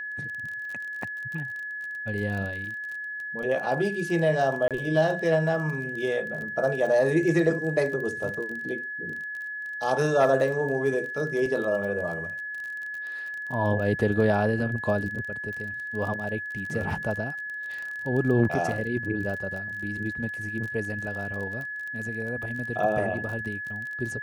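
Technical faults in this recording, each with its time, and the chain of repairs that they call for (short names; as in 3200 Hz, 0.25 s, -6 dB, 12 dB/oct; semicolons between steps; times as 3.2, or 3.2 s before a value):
crackle 30/s -33 dBFS
tone 1700 Hz -32 dBFS
4.68–4.71 gap 27 ms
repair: de-click; notch 1700 Hz, Q 30; interpolate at 4.68, 27 ms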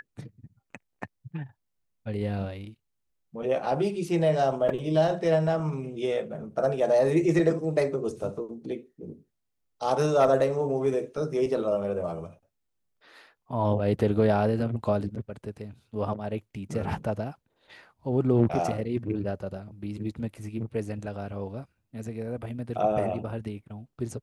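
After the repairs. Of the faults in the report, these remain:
none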